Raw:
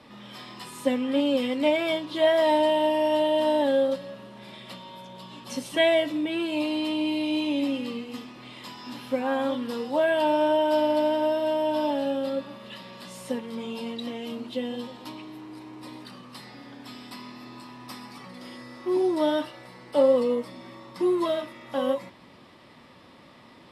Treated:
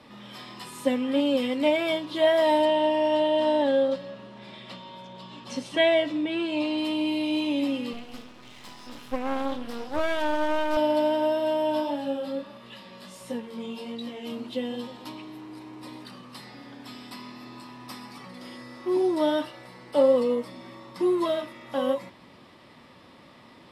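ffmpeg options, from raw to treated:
-filter_complex "[0:a]asettb=1/sr,asplit=3[s0][s1][s2];[s0]atrim=end=2.654[s3];[s1]atrim=start=2.65:end=6.78,asetpts=PTS-STARTPTS,afade=t=in:d=0.004:c=qsin,afade=t=out:st=4.126:d=0.004:c=qsin,lowpass=6400[s4];[s2]atrim=start=6.776[s5];[s3][s4]acrossfade=d=0.004:c1=hsin:c2=qsin[s6];[s6][s5]acrossfade=d=0.004:c1=qsin:c2=hsin,asettb=1/sr,asplit=3[s7][s8][s9];[s7]atrim=end=7.934[s10];[s8]atrim=start=7.93:end=10.77,asetpts=PTS-STARTPTS,afade=t=in:d=0.004:c=qsin,afade=t=out:st=2.836:d=0.004:c=qsin,aeval=exprs='max(val(0),0)':c=same[s11];[s9]atrim=start=10.766[s12];[s10][s11]acrossfade=d=0.004:c1=hsin:c2=qsin[s13];[s13][s12]acrossfade=d=0.004:c1=qsin:c2=hsin,asplit=3[s14][s15][s16];[s14]afade=t=out:st=11.8:d=0.02[s17];[s15]flanger=delay=17:depth=4.8:speed=1.5,afade=t=in:st=11.8:d=0.02,afade=t=out:st=14.24:d=0.02[s18];[s16]afade=t=in:st=14.24:d=0.02[s19];[s17][s18][s19]amix=inputs=3:normalize=0"

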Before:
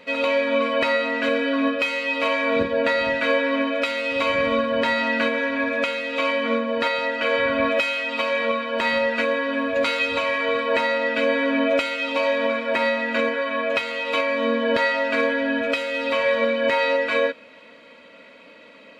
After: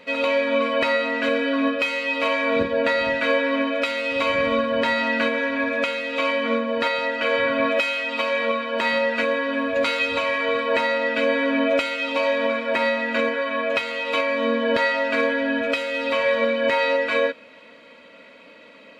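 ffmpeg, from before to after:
-filter_complex "[0:a]asettb=1/sr,asplit=3[s0][s1][s2];[s0]atrim=end=7.454[s3];[s1]atrim=start=7.45:end=9.23,asetpts=PTS-STARTPTS,afade=t=in:d=0.004:c=qsin,afade=t=out:st=1.776:d=0.004:c=qsin,highpass=130[s4];[s2]atrim=start=9.226[s5];[s3][s4]acrossfade=d=0.004:c1=hsin:c2=qsin[s6];[s6][s5]acrossfade=d=0.004:c1=qsin:c2=hsin"

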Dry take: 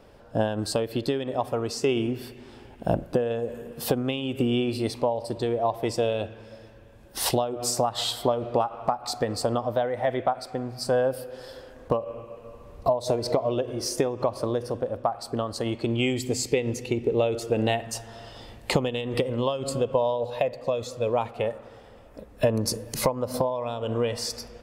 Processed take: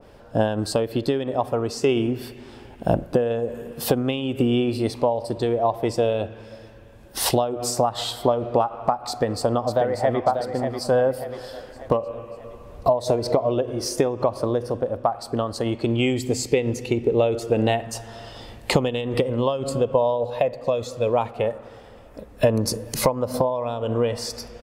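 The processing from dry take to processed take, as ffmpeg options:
-filter_complex "[0:a]asplit=2[s0][s1];[s1]afade=t=in:st=9.08:d=0.01,afade=t=out:st=10.23:d=0.01,aecho=0:1:590|1180|1770|2360|2950:0.446684|0.201008|0.0904534|0.040704|0.0183168[s2];[s0][s2]amix=inputs=2:normalize=0,adynamicequalizer=threshold=0.01:dfrequency=1700:dqfactor=0.7:tfrequency=1700:tqfactor=0.7:attack=5:release=100:ratio=0.375:range=3:mode=cutabove:tftype=highshelf,volume=1.58"

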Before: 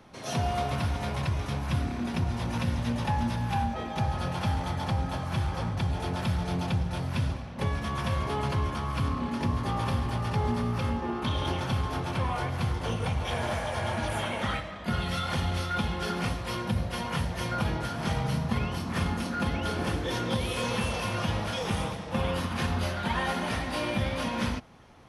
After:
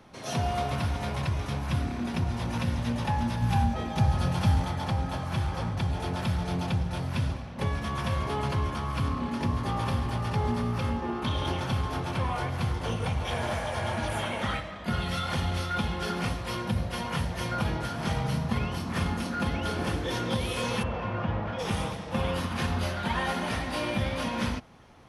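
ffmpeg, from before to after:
-filter_complex "[0:a]asettb=1/sr,asplit=3[s0][s1][s2];[s0]atrim=end=3.424[s3];[s1]atrim=start=3.42:end=4.65,asetpts=PTS-STARTPTS,afade=t=in:d=0.004:c=qsin,afade=t=out:st=1.226:d=0.004:c=qsin,bass=f=250:g=6,treble=f=4000:g=4[s4];[s2]atrim=start=4.646[s5];[s3][s4]acrossfade=d=0.004:c1=hsin:c2=qsin[s6];[s6][s5]acrossfade=d=0.004:c1=qsin:c2=hsin,asplit=3[s7][s8][s9];[s7]afade=t=out:st=20.82:d=0.02[s10];[s8]lowpass=1700,afade=t=in:st=20.82:d=0.02,afade=t=out:st=21.58:d=0.02[s11];[s9]afade=t=in:st=21.58:d=0.02[s12];[s10][s11][s12]amix=inputs=3:normalize=0"

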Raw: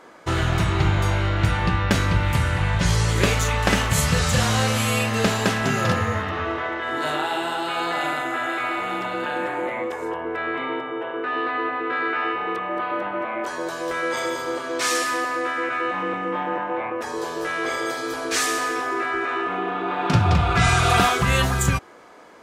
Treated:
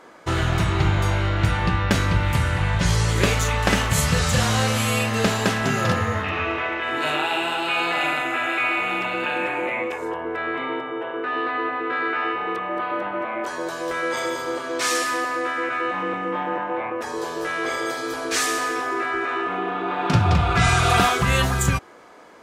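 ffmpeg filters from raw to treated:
-filter_complex "[0:a]asettb=1/sr,asplit=3[s0][s1][s2];[s0]atrim=end=6.244[s3];[s1]atrim=start=6.24:end=9.98,asetpts=PTS-STARTPTS,afade=t=in:d=0.004:c=qsin,afade=t=out:st=3.736:d=0.004:c=qsin,equalizer=f=2500:t=o:w=0.31:g=14.5[s4];[s2]atrim=start=9.976[s5];[s3][s4]acrossfade=d=0.004:c1=hsin:c2=qsin[s6];[s6][s5]acrossfade=d=0.004:c1=qsin:c2=hsin"

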